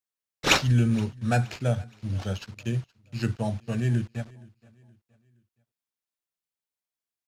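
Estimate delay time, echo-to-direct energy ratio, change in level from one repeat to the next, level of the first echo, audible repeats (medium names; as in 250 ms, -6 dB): 471 ms, -23.5 dB, -8.0 dB, -24.0 dB, 2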